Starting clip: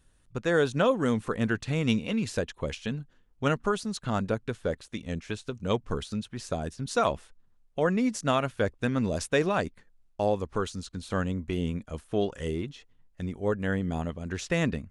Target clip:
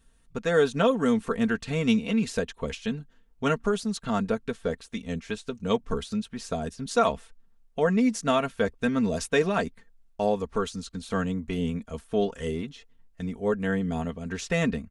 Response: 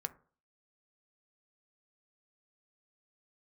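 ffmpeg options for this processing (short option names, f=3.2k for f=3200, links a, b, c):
-af "aecho=1:1:4.4:0.63"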